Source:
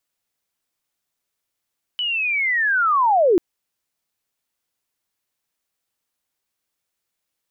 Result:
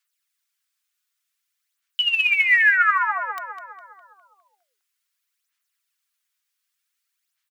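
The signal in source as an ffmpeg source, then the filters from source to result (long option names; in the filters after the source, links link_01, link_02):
-f lavfi -i "aevalsrc='pow(10,(-20.5+9*t/1.39)/20)*sin(2*PI*(3000*t-2680*t*t/(2*1.39)))':duration=1.39:sample_rate=44100"
-filter_complex "[0:a]highpass=frequency=1300:width=0.5412,highpass=frequency=1300:width=1.3066,aphaser=in_gain=1:out_gain=1:delay=4.9:decay=0.56:speed=0.54:type=sinusoidal,asplit=2[link_01][link_02];[link_02]adelay=204,lowpass=frequency=3000:poles=1,volume=-5.5dB,asplit=2[link_03][link_04];[link_04]adelay=204,lowpass=frequency=3000:poles=1,volume=0.55,asplit=2[link_05][link_06];[link_06]adelay=204,lowpass=frequency=3000:poles=1,volume=0.55,asplit=2[link_07][link_08];[link_08]adelay=204,lowpass=frequency=3000:poles=1,volume=0.55,asplit=2[link_09][link_10];[link_10]adelay=204,lowpass=frequency=3000:poles=1,volume=0.55,asplit=2[link_11][link_12];[link_12]adelay=204,lowpass=frequency=3000:poles=1,volume=0.55,asplit=2[link_13][link_14];[link_14]adelay=204,lowpass=frequency=3000:poles=1,volume=0.55[link_15];[link_03][link_05][link_07][link_09][link_11][link_13][link_15]amix=inputs=7:normalize=0[link_16];[link_01][link_16]amix=inputs=2:normalize=0"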